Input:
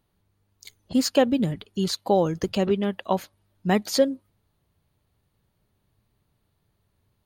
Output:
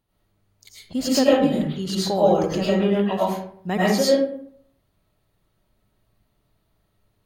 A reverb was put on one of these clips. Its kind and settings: digital reverb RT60 0.62 s, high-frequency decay 0.55×, pre-delay 65 ms, DRR -8 dB; gain -4.5 dB

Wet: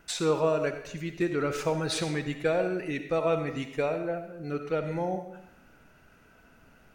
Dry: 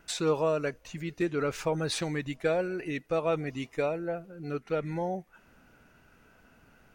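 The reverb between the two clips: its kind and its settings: digital reverb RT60 0.79 s, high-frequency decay 0.9×, pre-delay 25 ms, DRR 7.5 dB; gain +1 dB

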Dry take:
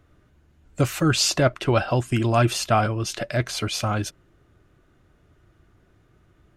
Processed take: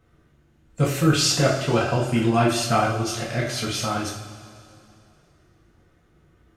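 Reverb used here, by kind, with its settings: two-slope reverb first 0.51 s, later 2.7 s, from -16 dB, DRR -5 dB; gain -5.5 dB

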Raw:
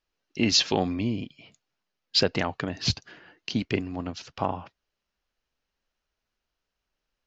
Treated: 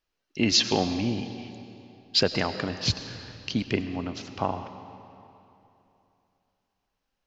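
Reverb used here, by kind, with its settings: digital reverb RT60 3 s, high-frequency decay 0.8×, pre-delay 60 ms, DRR 10 dB

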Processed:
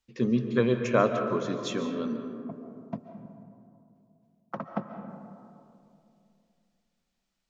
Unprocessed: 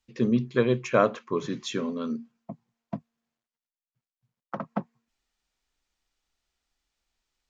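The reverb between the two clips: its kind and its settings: digital reverb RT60 2.7 s, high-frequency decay 0.3×, pre-delay 0.1 s, DRR 6.5 dB; gain -2 dB

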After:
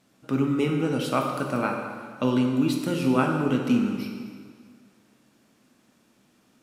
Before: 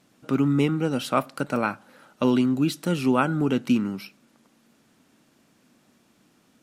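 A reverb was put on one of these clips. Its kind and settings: plate-style reverb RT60 1.9 s, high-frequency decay 0.85×, DRR 1.5 dB; gain -3 dB

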